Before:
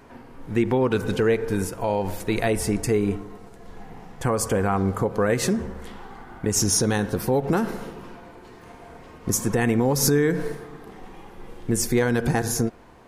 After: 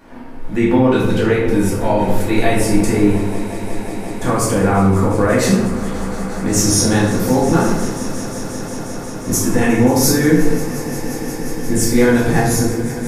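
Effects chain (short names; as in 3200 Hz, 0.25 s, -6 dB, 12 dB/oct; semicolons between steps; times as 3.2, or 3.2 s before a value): on a send: swelling echo 0.178 s, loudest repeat 5, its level -18 dB; on the sum: shoebox room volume 260 m³, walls mixed, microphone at 2.4 m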